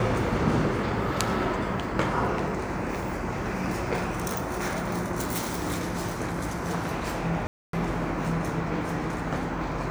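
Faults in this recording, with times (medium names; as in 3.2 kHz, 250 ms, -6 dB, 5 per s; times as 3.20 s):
7.47–7.73 s: dropout 263 ms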